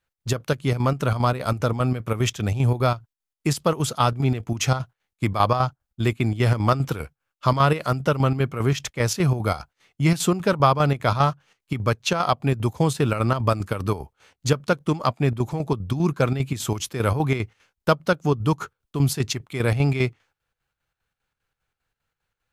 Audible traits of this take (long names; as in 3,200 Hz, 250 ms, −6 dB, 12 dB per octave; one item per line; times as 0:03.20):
chopped level 5 Hz, depth 60%, duty 65%